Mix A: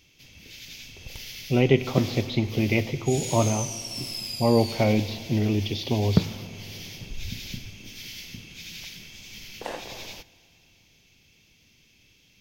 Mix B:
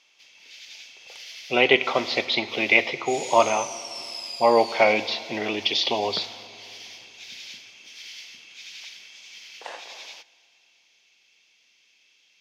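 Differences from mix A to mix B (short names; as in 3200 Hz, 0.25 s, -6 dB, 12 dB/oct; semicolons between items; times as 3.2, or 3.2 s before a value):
speech +11.5 dB; master: add BPF 760–6800 Hz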